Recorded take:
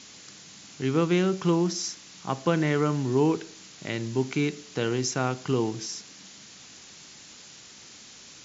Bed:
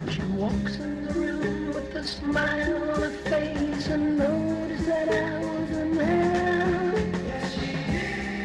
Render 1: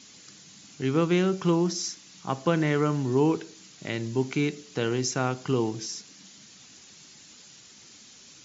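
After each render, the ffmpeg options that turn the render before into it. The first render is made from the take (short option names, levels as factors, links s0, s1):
-af "afftdn=nr=6:nf=-49"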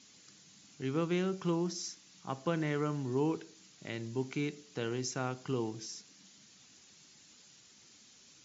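-af "volume=0.355"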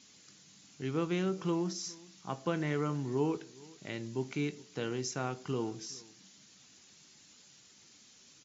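-filter_complex "[0:a]asplit=2[s0][s1];[s1]adelay=21,volume=0.211[s2];[s0][s2]amix=inputs=2:normalize=0,asplit=2[s3][s4];[s4]adelay=414,volume=0.0708,highshelf=f=4000:g=-9.32[s5];[s3][s5]amix=inputs=2:normalize=0"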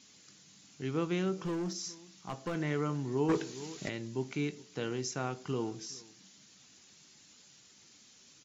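-filter_complex "[0:a]asettb=1/sr,asplit=3[s0][s1][s2];[s0]atrim=end=1.454[s3];[s1]atrim=start=1.45:end=2.55,asetpts=PTS-STARTPTS,afade=t=in:d=0.004:c=qsin,afade=t=out:st=1.096:d=0.004:c=qsin,volume=35.5,asoftclip=hard,volume=0.0282[s4];[s2]atrim=start=2.546[s5];[s3][s4]acrossfade=d=0.004:c1=hsin:c2=qsin[s6];[s6][s5]acrossfade=d=0.004:c1=qsin:c2=hsin,asplit=3[s7][s8][s9];[s7]afade=t=out:st=3.28:d=0.02[s10];[s8]aeval=exprs='0.0708*sin(PI/2*2*val(0)/0.0708)':c=same,afade=t=in:st=3.28:d=0.02,afade=t=out:st=3.88:d=0.02[s11];[s9]afade=t=in:st=3.88:d=0.02[s12];[s10][s11][s12]amix=inputs=3:normalize=0"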